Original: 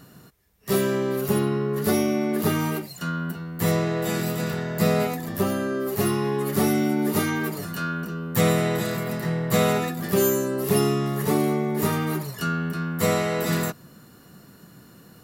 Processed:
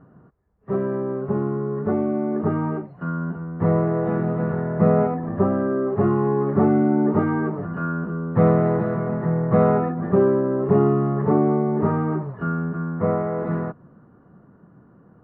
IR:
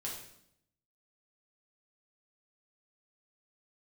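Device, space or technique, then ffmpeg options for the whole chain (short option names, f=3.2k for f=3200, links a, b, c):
action camera in a waterproof case: -filter_complex "[0:a]asettb=1/sr,asplit=3[a][b][c];[a]atrim=end=12.644[d];[b]atrim=start=12.64:end=13.4,asetpts=PTS-STARTPTS,afade=t=in:d=0.004:c=qsin,afade=t=out:st=0.756:d=0.004:c=qsin,lowpass=2.5k[e];[c]atrim=start=13.396[f];[d][e]acrossfade=d=0.004:c1=hsin:c2=qsin[g];[g][f]acrossfade=d=0.004:c1=qsin:c2=hsin,lowpass=f=1.3k:w=0.5412,lowpass=f=1.3k:w=1.3066,dynaudnorm=f=350:g=17:m=6dB,volume=-1dB" -ar 22050 -c:a aac -b:a 96k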